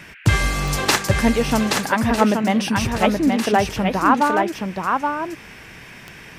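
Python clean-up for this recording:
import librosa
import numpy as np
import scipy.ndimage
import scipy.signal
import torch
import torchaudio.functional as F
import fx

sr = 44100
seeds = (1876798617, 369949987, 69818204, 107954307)

y = fx.fix_declick_ar(x, sr, threshold=10.0)
y = fx.noise_reduce(y, sr, print_start_s=5.53, print_end_s=6.03, reduce_db=23.0)
y = fx.fix_echo_inverse(y, sr, delay_ms=825, level_db=-4.0)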